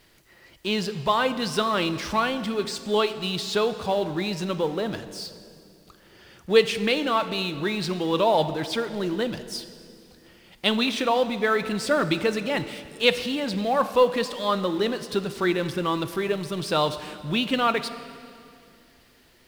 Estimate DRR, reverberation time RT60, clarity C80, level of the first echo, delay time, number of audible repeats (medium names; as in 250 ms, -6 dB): 11.5 dB, 2.5 s, 13.5 dB, no echo, no echo, no echo